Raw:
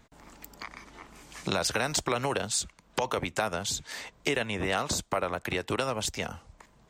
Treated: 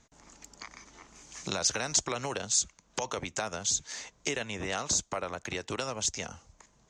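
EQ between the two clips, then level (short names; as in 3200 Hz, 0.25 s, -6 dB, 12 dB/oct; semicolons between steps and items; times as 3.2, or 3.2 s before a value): synth low-pass 6500 Hz, resonance Q 4.7; -5.5 dB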